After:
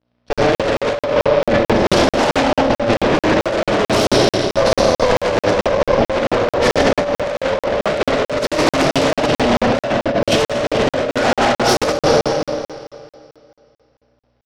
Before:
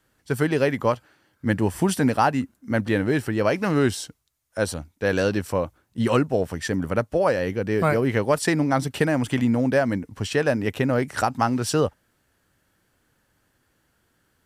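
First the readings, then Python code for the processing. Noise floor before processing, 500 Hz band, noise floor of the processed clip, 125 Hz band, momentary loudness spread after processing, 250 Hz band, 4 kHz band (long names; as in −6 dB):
−69 dBFS, +9.0 dB, below −85 dBFS, +1.5 dB, 4 LU, +4.0 dB, +14.0 dB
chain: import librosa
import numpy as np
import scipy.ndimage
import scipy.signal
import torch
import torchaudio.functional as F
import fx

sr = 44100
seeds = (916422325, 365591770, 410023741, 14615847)

y = fx.add_hum(x, sr, base_hz=60, snr_db=21)
y = scipy.signal.sosfilt(scipy.signal.butter(2, 120.0, 'highpass', fs=sr, output='sos'), y)
y = fx.peak_eq(y, sr, hz=170.0, db=-6.0, octaves=0.9)
y = fx.leveller(y, sr, passes=5)
y = scipy.signal.sosfilt(scipy.signal.cheby1(5, 1.0, 5500.0, 'lowpass', fs=sr, output='sos'), y)
y = y + 10.0 ** (-22.0 / 20.0) * np.pad(y, (int(411 * sr / 1000.0), 0))[:len(y)]
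y = fx.rev_schroeder(y, sr, rt60_s=2.8, comb_ms=26, drr_db=-6.0)
y = fx.cheby_harmonics(y, sr, harmonics=(2, 3, 6, 8), levels_db=(-9, -18, -26, -8), full_scale_db=8.5)
y = fx.peak_eq(y, sr, hz=580.0, db=10.5, octaves=0.47)
y = fx.over_compress(y, sr, threshold_db=-1.0, ratio=-0.5)
y = fx.buffer_crackle(y, sr, first_s=0.33, period_s=0.22, block=2048, kind='zero')
y = y * librosa.db_to_amplitude(-13.0)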